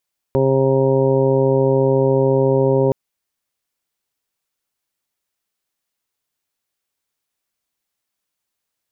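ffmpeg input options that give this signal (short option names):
-f lavfi -i "aevalsrc='0.119*sin(2*PI*134*t)+0.0794*sin(2*PI*268*t)+0.158*sin(2*PI*402*t)+0.126*sin(2*PI*536*t)+0.0224*sin(2*PI*670*t)+0.0188*sin(2*PI*804*t)+0.0422*sin(2*PI*938*t)':d=2.57:s=44100"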